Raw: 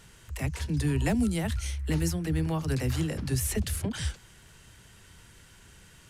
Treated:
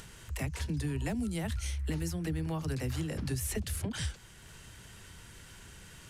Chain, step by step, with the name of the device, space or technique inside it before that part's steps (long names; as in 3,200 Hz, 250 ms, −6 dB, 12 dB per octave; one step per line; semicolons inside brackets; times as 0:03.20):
upward and downward compression (upward compression, threshold −45 dBFS; downward compressor 5 to 1, threshold −31 dBFS, peak gain reduction 8.5 dB)